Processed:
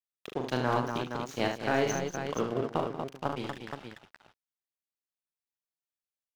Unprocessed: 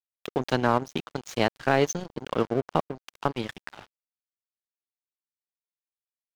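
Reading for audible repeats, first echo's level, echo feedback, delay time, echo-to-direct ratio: 5, -5.0 dB, no steady repeat, 40 ms, 0.0 dB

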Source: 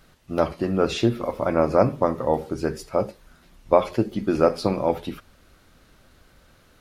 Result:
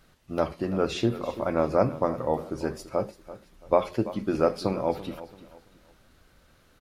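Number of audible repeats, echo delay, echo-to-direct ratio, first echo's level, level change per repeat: 2, 0.336 s, -15.0 dB, -15.5 dB, -10.0 dB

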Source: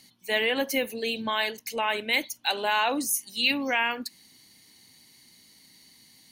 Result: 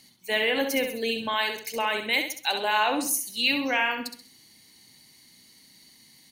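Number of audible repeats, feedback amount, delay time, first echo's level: 4, 37%, 66 ms, -7.0 dB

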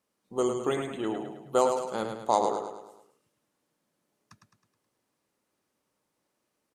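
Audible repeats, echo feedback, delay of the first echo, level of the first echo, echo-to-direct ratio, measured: 5, 48%, 0.106 s, -6.0 dB, -5.0 dB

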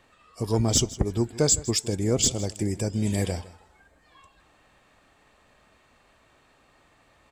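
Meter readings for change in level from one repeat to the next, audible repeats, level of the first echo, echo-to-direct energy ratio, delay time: -15.5 dB, 2, -18.5 dB, -18.5 dB, 0.159 s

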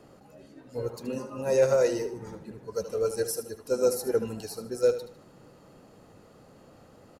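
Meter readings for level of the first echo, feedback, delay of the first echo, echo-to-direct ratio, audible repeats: -11.5 dB, 35%, 76 ms, -11.0 dB, 3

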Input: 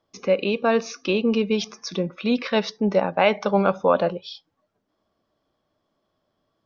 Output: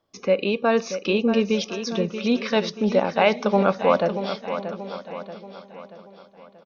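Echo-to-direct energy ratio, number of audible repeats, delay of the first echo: -8.5 dB, 7, 0.632 s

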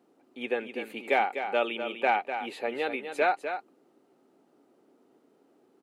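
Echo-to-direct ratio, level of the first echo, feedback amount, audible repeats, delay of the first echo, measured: -8.5 dB, -8.5 dB, no steady repeat, 1, 0.25 s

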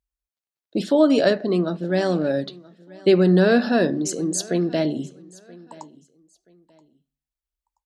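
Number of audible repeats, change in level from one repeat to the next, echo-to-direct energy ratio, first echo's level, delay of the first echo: 2, -11.5 dB, -22.0 dB, -22.5 dB, 0.978 s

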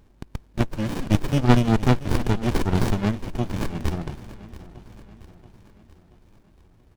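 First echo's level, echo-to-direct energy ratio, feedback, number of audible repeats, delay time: -17.0 dB, -15.5 dB, 52%, 4, 0.681 s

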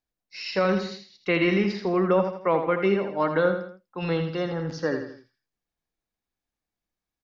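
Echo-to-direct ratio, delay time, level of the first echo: -7.0 dB, 82 ms, -8.0 dB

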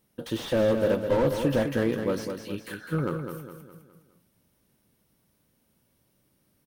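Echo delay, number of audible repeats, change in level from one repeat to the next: 0.206 s, 4, -7.0 dB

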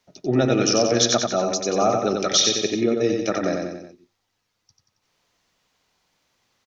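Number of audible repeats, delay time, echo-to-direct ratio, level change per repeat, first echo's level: 4, 91 ms, -2.5 dB, -5.5 dB, -4.0 dB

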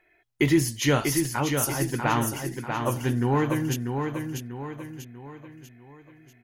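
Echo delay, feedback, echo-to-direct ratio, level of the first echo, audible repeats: 0.642 s, 45%, -4.5 dB, -5.5 dB, 5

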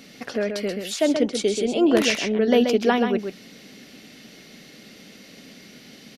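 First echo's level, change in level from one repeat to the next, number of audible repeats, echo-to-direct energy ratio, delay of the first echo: -6.5 dB, no steady repeat, 1, -6.5 dB, 0.131 s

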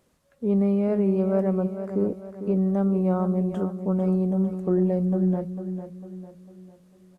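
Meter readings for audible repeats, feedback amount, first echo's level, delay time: 4, 43%, -10.0 dB, 0.45 s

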